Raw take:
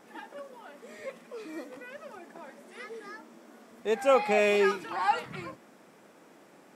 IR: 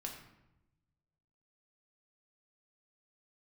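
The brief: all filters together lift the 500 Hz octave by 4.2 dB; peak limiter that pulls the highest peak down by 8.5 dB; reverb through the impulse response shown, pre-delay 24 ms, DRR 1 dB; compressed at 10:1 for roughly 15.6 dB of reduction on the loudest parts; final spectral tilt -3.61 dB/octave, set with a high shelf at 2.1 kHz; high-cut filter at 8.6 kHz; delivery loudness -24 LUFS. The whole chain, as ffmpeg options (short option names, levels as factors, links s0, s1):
-filter_complex "[0:a]lowpass=8600,equalizer=f=500:t=o:g=4.5,highshelf=f=2100:g=9,acompressor=threshold=0.0355:ratio=10,alimiter=level_in=1.78:limit=0.0631:level=0:latency=1,volume=0.562,asplit=2[s0][s1];[1:a]atrim=start_sample=2205,adelay=24[s2];[s1][s2]afir=irnorm=-1:irlink=0,volume=1.12[s3];[s0][s3]amix=inputs=2:normalize=0,volume=4.47"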